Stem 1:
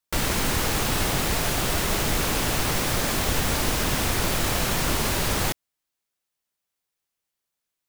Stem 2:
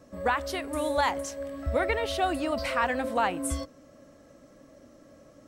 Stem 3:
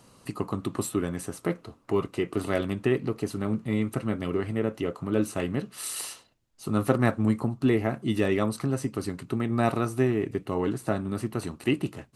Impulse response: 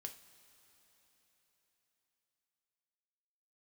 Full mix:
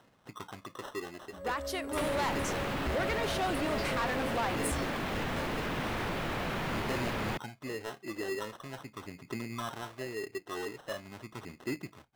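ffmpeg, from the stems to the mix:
-filter_complex "[0:a]acrossover=split=130[link_01][link_02];[link_02]acompressor=threshold=-32dB:ratio=5[link_03];[link_01][link_03]amix=inputs=2:normalize=0,acrossover=split=150 3200:gain=0.141 1 0.0794[link_04][link_05][link_06];[link_04][link_05][link_06]amix=inputs=3:normalize=0,adelay=1850,volume=3dB[link_07];[1:a]dynaudnorm=framelen=120:gausssize=5:maxgain=12dB,adelay=1200,volume=-12.5dB[link_08];[2:a]aphaser=in_gain=1:out_gain=1:delay=2.9:decay=0.63:speed=0.43:type=triangular,acrusher=samples=19:mix=1:aa=0.000001,asplit=2[link_09][link_10];[link_10]highpass=frequency=720:poles=1,volume=13dB,asoftclip=type=tanh:threshold=-2dB[link_11];[link_09][link_11]amix=inputs=2:normalize=0,lowpass=frequency=3200:poles=1,volume=-6dB,volume=-15.5dB[link_12];[link_07][link_08][link_12]amix=inputs=3:normalize=0,highshelf=frequency=8700:gain=4.5,asoftclip=type=tanh:threshold=-26.5dB"

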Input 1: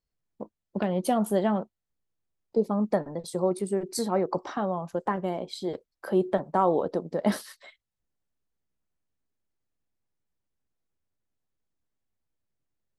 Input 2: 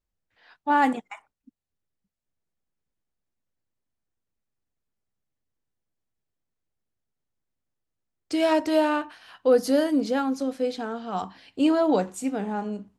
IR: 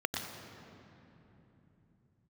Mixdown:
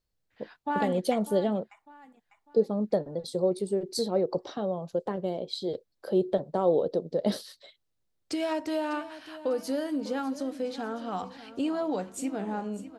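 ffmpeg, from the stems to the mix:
-filter_complex "[0:a]equalizer=frequency=125:width_type=o:width=1:gain=7,equalizer=frequency=500:width_type=o:width=1:gain=10,equalizer=frequency=1000:width_type=o:width=1:gain=-6,equalizer=frequency=2000:width_type=o:width=1:gain=-5,equalizer=frequency=4000:width_type=o:width=1:gain=12,volume=-6.5dB[link_01];[1:a]acompressor=threshold=-32dB:ratio=2.5,volume=0.5dB,asplit=2[link_02][link_03];[link_03]volume=-15dB,aecho=0:1:599|1198|1797|2396|2995|3594:1|0.42|0.176|0.0741|0.0311|0.0131[link_04];[link_01][link_02][link_04]amix=inputs=3:normalize=0"

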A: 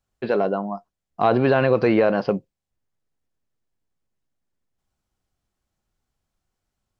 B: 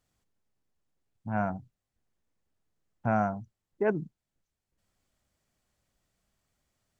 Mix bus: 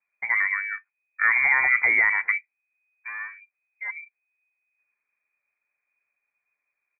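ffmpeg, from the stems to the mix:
ffmpeg -i stem1.wav -i stem2.wav -filter_complex "[0:a]volume=-2.5dB[link_01];[1:a]lowpass=1900,aecho=1:1:6.8:0.71,volume=-9dB[link_02];[link_01][link_02]amix=inputs=2:normalize=0,lowpass=frequency=2100:width_type=q:width=0.5098,lowpass=frequency=2100:width_type=q:width=0.6013,lowpass=frequency=2100:width_type=q:width=0.9,lowpass=frequency=2100:width_type=q:width=2.563,afreqshift=-2500" out.wav

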